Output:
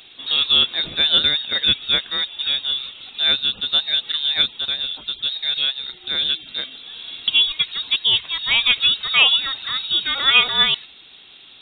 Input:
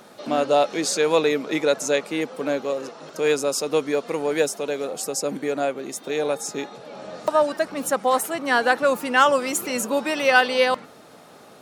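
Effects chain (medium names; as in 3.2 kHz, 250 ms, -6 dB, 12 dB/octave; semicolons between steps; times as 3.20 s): 1.30–2.71 s: high-pass 200 Hz 24 dB/octave; frequency inversion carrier 4 kHz; trim +2 dB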